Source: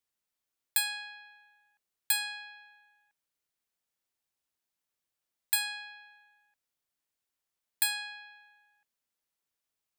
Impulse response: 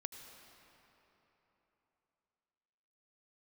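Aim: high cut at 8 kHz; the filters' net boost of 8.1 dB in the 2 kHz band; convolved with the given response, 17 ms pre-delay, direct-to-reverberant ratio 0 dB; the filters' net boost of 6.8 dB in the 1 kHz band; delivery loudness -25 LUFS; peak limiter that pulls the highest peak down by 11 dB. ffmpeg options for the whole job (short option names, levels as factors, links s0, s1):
-filter_complex "[0:a]lowpass=8000,equalizer=f=1000:t=o:g=7.5,equalizer=f=2000:t=o:g=8,alimiter=limit=0.0631:level=0:latency=1,asplit=2[s0][s1];[1:a]atrim=start_sample=2205,adelay=17[s2];[s1][s2]afir=irnorm=-1:irlink=0,volume=1.33[s3];[s0][s3]amix=inputs=2:normalize=0,volume=2.51"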